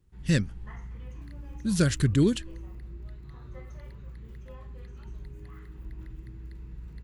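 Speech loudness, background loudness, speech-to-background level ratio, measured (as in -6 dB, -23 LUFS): -26.0 LUFS, -44.5 LUFS, 18.5 dB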